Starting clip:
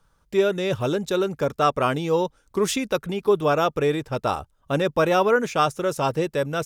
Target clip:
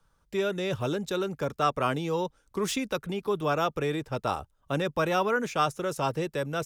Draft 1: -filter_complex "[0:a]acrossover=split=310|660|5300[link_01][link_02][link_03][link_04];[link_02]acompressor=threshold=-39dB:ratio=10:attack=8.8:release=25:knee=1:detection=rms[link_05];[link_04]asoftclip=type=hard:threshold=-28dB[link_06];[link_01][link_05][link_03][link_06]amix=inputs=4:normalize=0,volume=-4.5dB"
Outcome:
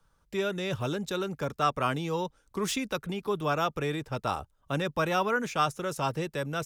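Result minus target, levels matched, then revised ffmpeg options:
downward compressor: peak gain reduction +8 dB
-filter_complex "[0:a]acrossover=split=310|660|5300[link_01][link_02][link_03][link_04];[link_02]acompressor=threshold=-30dB:ratio=10:attack=8.8:release=25:knee=1:detection=rms[link_05];[link_04]asoftclip=type=hard:threshold=-28dB[link_06];[link_01][link_05][link_03][link_06]amix=inputs=4:normalize=0,volume=-4.5dB"

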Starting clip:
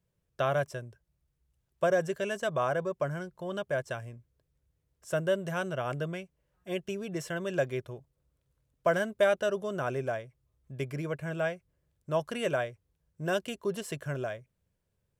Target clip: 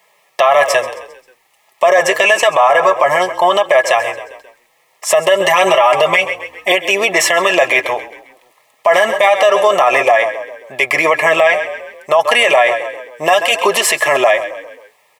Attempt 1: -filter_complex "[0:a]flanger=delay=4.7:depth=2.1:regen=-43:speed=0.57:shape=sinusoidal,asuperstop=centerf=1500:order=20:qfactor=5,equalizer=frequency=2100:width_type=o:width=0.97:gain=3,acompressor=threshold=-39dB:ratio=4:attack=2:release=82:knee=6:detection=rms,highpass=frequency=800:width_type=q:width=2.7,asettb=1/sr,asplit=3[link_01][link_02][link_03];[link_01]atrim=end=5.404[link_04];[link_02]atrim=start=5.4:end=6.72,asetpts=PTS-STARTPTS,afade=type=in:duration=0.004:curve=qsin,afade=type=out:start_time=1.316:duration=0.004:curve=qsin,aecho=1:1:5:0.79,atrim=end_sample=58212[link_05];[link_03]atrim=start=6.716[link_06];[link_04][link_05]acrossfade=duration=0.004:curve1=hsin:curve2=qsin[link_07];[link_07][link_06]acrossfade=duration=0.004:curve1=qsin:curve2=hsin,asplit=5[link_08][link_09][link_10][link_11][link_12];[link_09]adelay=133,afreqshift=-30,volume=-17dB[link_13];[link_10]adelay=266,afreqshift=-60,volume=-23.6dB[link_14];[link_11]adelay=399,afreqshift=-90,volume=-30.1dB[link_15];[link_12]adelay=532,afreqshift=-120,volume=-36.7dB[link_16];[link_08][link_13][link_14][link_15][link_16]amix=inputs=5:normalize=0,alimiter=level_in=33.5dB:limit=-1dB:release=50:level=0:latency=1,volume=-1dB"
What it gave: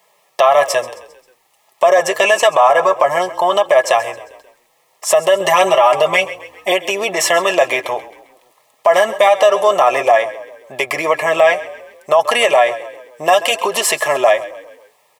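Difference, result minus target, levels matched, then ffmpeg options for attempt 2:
downward compressor: peak gain reduction +7 dB; 2,000 Hz band −3.0 dB
-filter_complex "[0:a]flanger=delay=4.7:depth=2.1:regen=-43:speed=0.57:shape=sinusoidal,asuperstop=centerf=1500:order=20:qfactor=5,equalizer=frequency=2100:width_type=o:width=0.97:gain=9.5,acompressor=threshold=-28.5dB:ratio=4:attack=2:release=82:knee=6:detection=rms,highpass=frequency=800:width_type=q:width=2.7,asettb=1/sr,asplit=3[link_01][link_02][link_03];[link_01]atrim=end=5.404[link_04];[link_02]atrim=start=5.4:end=6.72,asetpts=PTS-STARTPTS,afade=type=in:duration=0.004:curve=qsin,afade=type=out:start_time=1.316:duration=0.004:curve=qsin,aecho=1:1:5:0.79,atrim=end_sample=58212[link_05];[link_03]atrim=start=6.716[link_06];[link_04][link_05]acrossfade=duration=0.004:curve1=hsin:curve2=qsin[link_07];[link_07][link_06]acrossfade=duration=0.004:curve1=qsin:curve2=hsin,asplit=5[link_08][link_09][link_10][link_11][link_12];[link_09]adelay=133,afreqshift=-30,volume=-17dB[link_13];[link_10]adelay=266,afreqshift=-60,volume=-23.6dB[link_14];[link_11]adelay=399,afreqshift=-90,volume=-30.1dB[link_15];[link_12]adelay=532,afreqshift=-120,volume=-36.7dB[link_16];[link_08][link_13][link_14][link_15][link_16]amix=inputs=5:normalize=0,alimiter=level_in=33.5dB:limit=-1dB:release=50:level=0:latency=1,volume=-1dB"

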